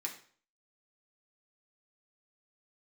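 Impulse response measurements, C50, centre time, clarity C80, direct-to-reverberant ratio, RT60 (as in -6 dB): 9.5 dB, 16 ms, 13.0 dB, -1.0 dB, 0.50 s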